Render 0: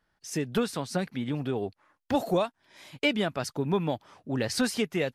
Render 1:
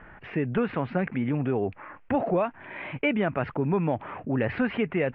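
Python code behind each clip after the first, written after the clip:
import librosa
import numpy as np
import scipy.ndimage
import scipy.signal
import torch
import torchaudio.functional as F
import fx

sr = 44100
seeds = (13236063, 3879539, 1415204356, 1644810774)

y = scipy.signal.sosfilt(scipy.signal.butter(8, 2600.0, 'lowpass', fs=sr, output='sos'), x)
y = fx.env_flatten(y, sr, amount_pct=50)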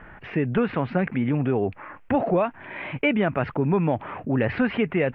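y = fx.bass_treble(x, sr, bass_db=1, treble_db=4)
y = y * 10.0 ** (3.0 / 20.0)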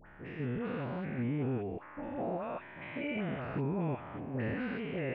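y = fx.spec_steps(x, sr, hold_ms=200)
y = fx.dispersion(y, sr, late='highs', ms=69.0, hz=1300.0)
y = y * 10.0 ** (-8.5 / 20.0)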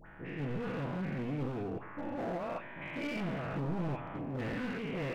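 y = np.clip(10.0 ** (35.5 / 20.0) * x, -1.0, 1.0) / 10.0 ** (35.5 / 20.0)
y = fx.room_shoebox(y, sr, seeds[0], volume_m3=740.0, walls='furnished', distance_m=0.67)
y = y * 10.0 ** (1.5 / 20.0)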